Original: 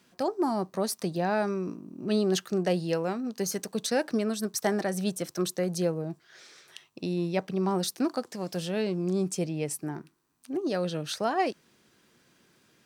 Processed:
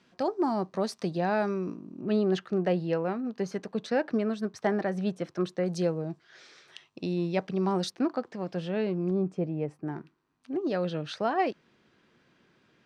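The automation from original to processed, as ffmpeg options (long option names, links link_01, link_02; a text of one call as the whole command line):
ffmpeg -i in.wav -af "asetnsamples=nb_out_samples=441:pad=0,asendcmd='2.01 lowpass f 2500;5.66 lowpass f 5000;7.9 lowpass f 2500;9.11 lowpass f 1300;9.88 lowpass f 3300',lowpass=4600" out.wav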